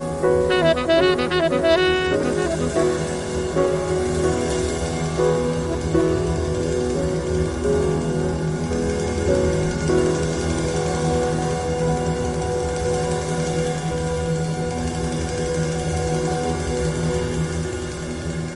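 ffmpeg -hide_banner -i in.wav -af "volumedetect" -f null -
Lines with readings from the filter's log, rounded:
mean_volume: -21.0 dB
max_volume: -5.0 dB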